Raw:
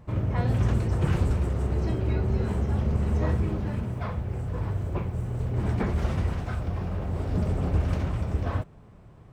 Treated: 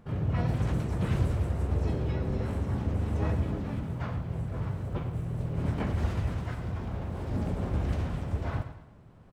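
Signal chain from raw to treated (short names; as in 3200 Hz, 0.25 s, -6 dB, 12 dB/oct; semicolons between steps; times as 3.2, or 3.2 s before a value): feedback echo 0.107 s, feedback 41%, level -10.5 dB; harmoniser +5 st -3 dB; gain -6 dB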